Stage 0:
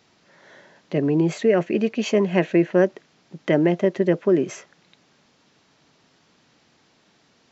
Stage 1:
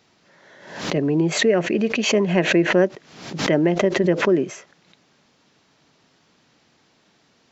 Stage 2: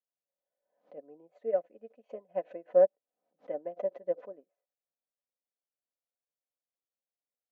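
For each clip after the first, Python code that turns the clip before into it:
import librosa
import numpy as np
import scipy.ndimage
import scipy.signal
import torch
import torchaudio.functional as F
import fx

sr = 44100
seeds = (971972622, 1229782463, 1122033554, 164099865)

y1 = fx.pre_swell(x, sr, db_per_s=78.0)
y2 = fx.bandpass_q(y1, sr, hz=600.0, q=5.1)
y2 = y2 + 0.63 * np.pad(y2, (int(4.0 * sr / 1000.0), 0))[:len(y2)]
y2 = fx.upward_expand(y2, sr, threshold_db=-41.0, expansion=2.5)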